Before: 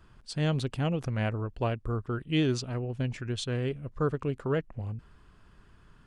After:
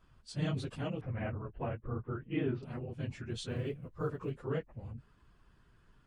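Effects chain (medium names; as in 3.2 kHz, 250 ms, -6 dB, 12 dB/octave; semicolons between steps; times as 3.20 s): phase randomisation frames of 50 ms; 1.01–2.63 s: low-pass 2.4 kHz 24 dB/octave; 3.34–4.31 s: short-mantissa float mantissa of 6-bit; trim -7.5 dB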